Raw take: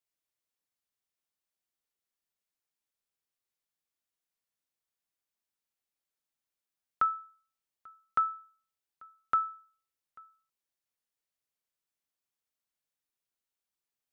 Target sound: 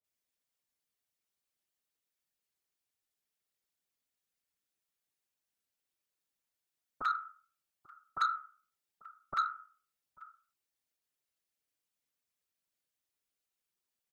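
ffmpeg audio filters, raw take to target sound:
-filter_complex "[0:a]afftfilt=real='hypot(re,im)*cos(2*PI*random(0))':imag='hypot(re,im)*sin(2*PI*random(1))':win_size=512:overlap=0.75,asoftclip=type=tanh:threshold=-28.5dB,acrossover=split=1000[a][b];[b]adelay=40[c];[a][c]amix=inputs=2:normalize=0,volume=7.5dB"

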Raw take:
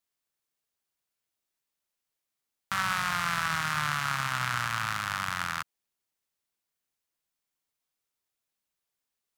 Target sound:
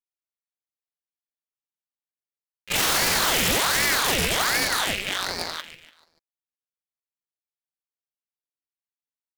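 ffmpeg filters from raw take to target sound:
-filter_complex "[0:a]agate=range=-46dB:threshold=-27dB:ratio=16:detection=peak,equalizer=f=4k:t=o:w=1.1:g=-4.5,asplit=2[a][b];[b]acompressor=threshold=-56dB:ratio=8,volume=1dB[c];[a][c]amix=inputs=2:normalize=0,aeval=exprs='0.0668*sin(PI/2*7.08*val(0)/0.0668)':c=same,asetrate=85689,aresample=44100,atempo=0.514651,aecho=1:1:145|290|435|580:0.266|0.109|0.0447|0.0183,aeval=exprs='val(0)*sin(2*PI*1100*n/s+1100*0.85/1.3*sin(2*PI*1.3*n/s))':c=same,volume=8.5dB"

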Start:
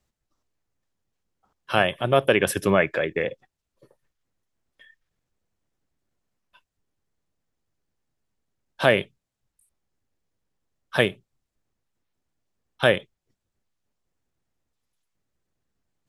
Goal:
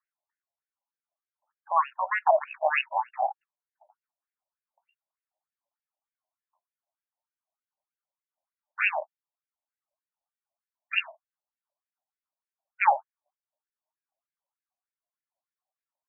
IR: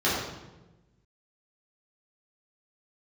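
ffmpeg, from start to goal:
-filter_complex "[0:a]acrossover=split=260|1100|4300[a][b][c][d];[a]dynaudnorm=f=640:g=3:m=10dB[e];[e][b][c][d]amix=inputs=4:normalize=0,aphaser=in_gain=1:out_gain=1:delay=4.5:decay=0.35:speed=0.23:type=sinusoidal,asetrate=68011,aresample=44100,atempo=0.64842,adynamicsmooth=sensitivity=4.5:basefreq=1.4k,afftfilt=real='re*between(b*sr/1024,750*pow(2100/750,0.5+0.5*sin(2*PI*3.3*pts/sr))/1.41,750*pow(2100/750,0.5+0.5*sin(2*PI*3.3*pts/sr))*1.41)':imag='im*between(b*sr/1024,750*pow(2100/750,0.5+0.5*sin(2*PI*3.3*pts/sr))/1.41,750*pow(2100/750,0.5+0.5*sin(2*PI*3.3*pts/sr))*1.41)':win_size=1024:overlap=0.75"

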